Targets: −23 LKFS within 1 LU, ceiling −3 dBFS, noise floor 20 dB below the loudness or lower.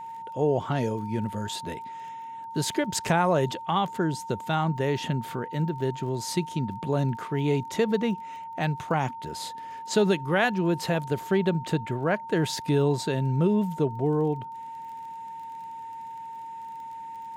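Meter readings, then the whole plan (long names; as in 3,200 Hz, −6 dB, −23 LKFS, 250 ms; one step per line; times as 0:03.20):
crackle rate 22 per second; interfering tone 910 Hz; level of the tone −36 dBFS; integrated loudness −27.0 LKFS; sample peak −10.0 dBFS; target loudness −23.0 LKFS
→ click removal
notch filter 910 Hz, Q 30
level +4 dB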